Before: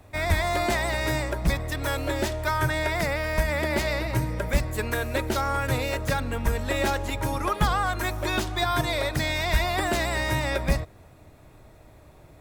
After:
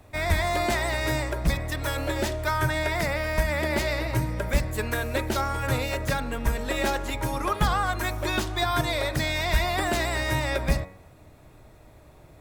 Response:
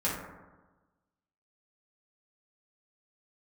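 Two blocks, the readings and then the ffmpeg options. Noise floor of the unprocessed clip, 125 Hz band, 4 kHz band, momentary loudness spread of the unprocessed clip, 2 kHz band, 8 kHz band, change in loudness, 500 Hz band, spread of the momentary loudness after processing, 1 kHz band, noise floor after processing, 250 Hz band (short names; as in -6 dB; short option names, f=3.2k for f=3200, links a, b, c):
-51 dBFS, -0.5 dB, 0.0 dB, 4 LU, -0.5 dB, 0.0 dB, -0.5 dB, -0.5 dB, 4 LU, -0.5 dB, -52 dBFS, -0.5 dB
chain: -af "bandreject=f=92.94:t=h:w=4,bandreject=f=185.88:t=h:w=4,bandreject=f=278.82:t=h:w=4,bandreject=f=371.76:t=h:w=4,bandreject=f=464.7:t=h:w=4,bandreject=f=557.64:t=h:w=4,bandreject=f=650.58:t=h:w=4,bandreject=f=743.52:t=h:w=4,bandreject=f=836.46:t=h:w=4,bandreject=f=929.4:t=h:w=4,bandreject=f=1.02234k:t=h:w=4,bandreject=f=1.11528k:t=h:w=4,bandreject=f=1.20822k:t=h:w=4,bandreject=f=1.30116k:t=h:w=4,bandreject=f=1.3941k:t=h:w=4,bandreject=f=1.48704k:t=h:w=4,bandreject=f=1.57998k:t=h:w=4,bandreject=f=1.67292k:t=h:w=4,bandreject=f=1.76586k:t=h:w=4,bandreject=f=1.8588k:t=h:w=4,bandreject=f=1.95174k:t=h:w=4,bandreject=f=2.04468k:t=h:w=4,bandreject=f=2.13762k:t=h:w=4,bandreject=f=2.23056k:t=h:w=4,bandreject=f=2.3235k:t=h:w=4,bandreject=f=2.41644k:t=h:w=4,bandreject=f=2.50938k:t=h:w=4"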